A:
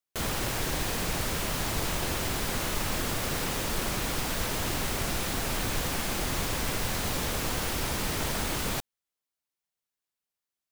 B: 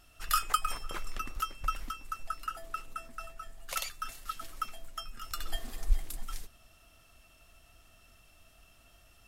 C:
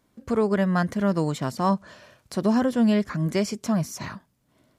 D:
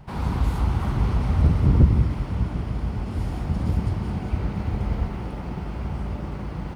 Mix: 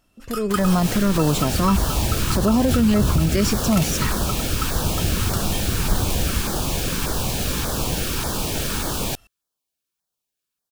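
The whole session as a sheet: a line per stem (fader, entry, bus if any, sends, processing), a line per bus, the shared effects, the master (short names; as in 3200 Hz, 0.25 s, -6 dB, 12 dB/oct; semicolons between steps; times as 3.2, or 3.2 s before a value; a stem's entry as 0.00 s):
-5.5 dB, 0.35 s, bus A, no send, notch 2000 Hz, Q 5.6
-7.0 dB, 0.00 s, no bus, no send, dry
-2.5 dB, 0.00 s, bus A, no send, dry
-12.5 dB, 1.35 s, bus A, no send, dry
bus A: 0.0 dB, LFO notch saw down 1.7 Hz 540–3000 Hz; limiter -21.5 dBFS, peak gain reduction 10 dB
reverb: off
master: AGC gain up to 12 dB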